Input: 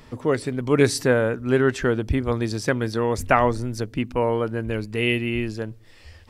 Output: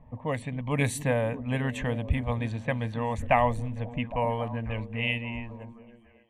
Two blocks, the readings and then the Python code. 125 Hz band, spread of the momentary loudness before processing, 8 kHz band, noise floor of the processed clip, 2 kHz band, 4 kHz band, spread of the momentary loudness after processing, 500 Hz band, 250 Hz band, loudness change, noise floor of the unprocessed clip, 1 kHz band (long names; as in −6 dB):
−3.0 dB, 8 LU, −8.0 dB, −56 dBFS, −6.0 dB, −7.0 dB, 9 LU, −9.0 dB, −8.0 dB, −6.5 dB, −48 dBFS, −3.5 dB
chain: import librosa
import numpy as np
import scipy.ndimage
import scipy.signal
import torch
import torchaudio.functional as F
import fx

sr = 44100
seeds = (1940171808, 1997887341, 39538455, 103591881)

p1 = fx.fade_out_tail(x, sr, length_s=1.55)
p2 = fx.env_lowpass(p1, sr, base_hz=720.0, full_db=-16.5)
p3 = fx.fixed_phaser(p2, sr, hz=1400.0, stages=6)
p4 = p3 + fx.echo_stepped(p3, sr, ms=270, hz=200.0, octaves=0.7, feedback_pct=70, wet_db=-8.5, dry=0)
y = p4 * 10.0 ** (-1.5 / 20.0)